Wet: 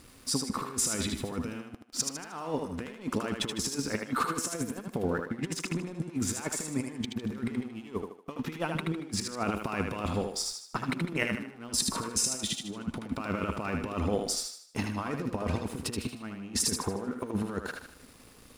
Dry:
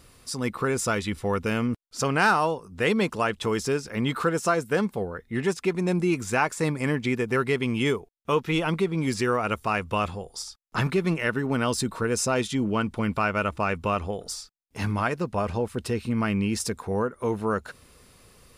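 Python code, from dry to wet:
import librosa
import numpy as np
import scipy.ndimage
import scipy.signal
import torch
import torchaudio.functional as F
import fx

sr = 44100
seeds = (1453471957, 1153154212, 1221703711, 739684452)

y = fx.peak_eq(x, sr, hz=260.0, db=10.0, octaves=0.6)
y = fx.over_compress(y, sr, threshold_db=-28.0, ratio=-0.5)
y = np.sign(y) * np.maximum(np.abs(y) - 10.0 ** (-49.0 / 20.0), 0.0)
y = fx.echo_thinned(y, sr, ms=77, feedback_pct=42, hz=260.0, wet_db=-4.5)
y = y * 10.0 ** (-4.0 / 20.0)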